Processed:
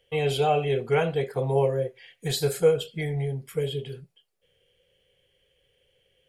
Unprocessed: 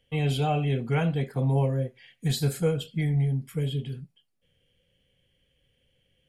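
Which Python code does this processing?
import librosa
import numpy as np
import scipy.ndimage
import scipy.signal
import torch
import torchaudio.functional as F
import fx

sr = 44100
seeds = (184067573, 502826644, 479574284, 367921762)

y = fx.low_shelf_res(x, sr, hz=330.0, db=-6.5, q=3.0)
y = y * 10.0 ** (3.0 / 20.0)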